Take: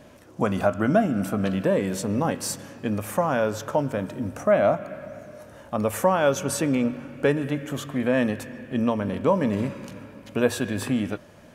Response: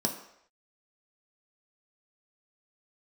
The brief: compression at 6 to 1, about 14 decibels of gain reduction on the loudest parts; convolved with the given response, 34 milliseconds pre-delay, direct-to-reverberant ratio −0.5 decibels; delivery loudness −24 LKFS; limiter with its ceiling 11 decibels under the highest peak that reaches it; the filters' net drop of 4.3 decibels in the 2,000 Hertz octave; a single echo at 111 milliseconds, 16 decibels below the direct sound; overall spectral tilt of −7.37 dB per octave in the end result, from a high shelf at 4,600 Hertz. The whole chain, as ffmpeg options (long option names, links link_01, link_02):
-filter_complex "[0:a]equalizer=frequency=2000:width_type=o:gain=-5,highshelf=frequency=4600:gain=-6,acompressor=threshold=-31dB:ratio=6,alimiter=level_in=5dB:limit=-24dB:level=0:latency=1,volume=-5dB,aecho=1:1:111:0.158,asplit=2[link_01][link_02];[1:a]atrim=start_sample=2205,adelay=34[link_03];[link_02][link_03]afir=irnorm=-1:irlink=0,volume=-6dB[link_04];[link_01][link_04]amix=inputs=2:normalize=0,volume=7dB"